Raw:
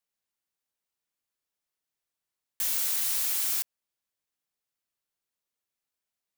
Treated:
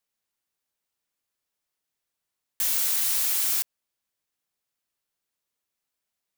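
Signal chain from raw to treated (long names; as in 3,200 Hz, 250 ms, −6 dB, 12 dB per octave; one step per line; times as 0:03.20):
0:02.67–0:03.42: high-pass filter 140 Hz 24 dB per octave
level +3.5 dB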